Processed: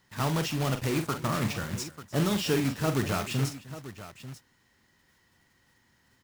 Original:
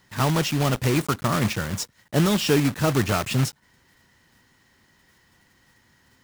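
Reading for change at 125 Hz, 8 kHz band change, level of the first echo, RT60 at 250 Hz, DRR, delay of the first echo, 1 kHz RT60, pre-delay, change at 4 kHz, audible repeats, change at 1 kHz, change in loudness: −6.5 dB, −6.5 dB, −9.0 dB, no reverb audible, no reverb audible, 44 ms, no reverb audible, no reverb audible, −6.0 dB, 3, −6.0 dB, −6.5 dB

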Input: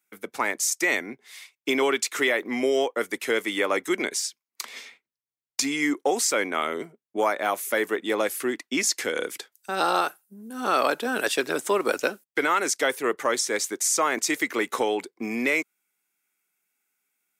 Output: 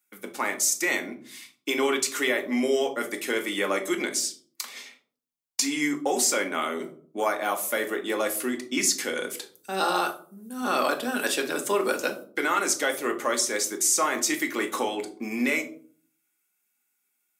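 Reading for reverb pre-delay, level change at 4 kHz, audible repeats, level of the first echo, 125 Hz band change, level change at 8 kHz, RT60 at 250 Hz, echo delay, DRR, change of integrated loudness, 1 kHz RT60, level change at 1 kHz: 3 ms, 0.0 dB, no echo audible, no echo audible, −0.5 dB, +1.5 dB, 0.70 s, no echo audible, 3.0 dB, −1.0 dB, 0.45 s, −1.5 dB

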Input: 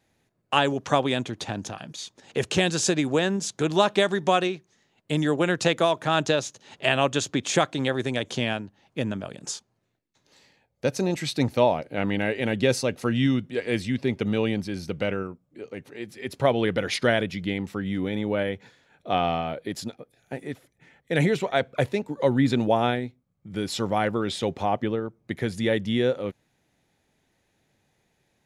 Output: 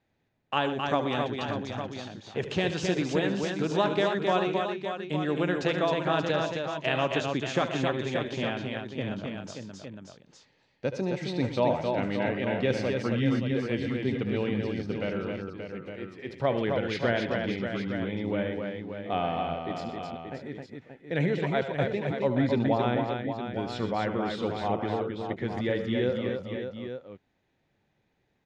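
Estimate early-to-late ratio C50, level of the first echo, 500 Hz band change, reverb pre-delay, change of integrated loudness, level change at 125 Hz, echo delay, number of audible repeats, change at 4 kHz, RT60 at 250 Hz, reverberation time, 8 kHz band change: no reverb audible, −11.5 dB, −3.0 dB, no reverb audible, −4.0 dB, −2.5 dB, 74 ms, 5, −6.5 dB, no reverb audible, no reverb audible, below −10 dB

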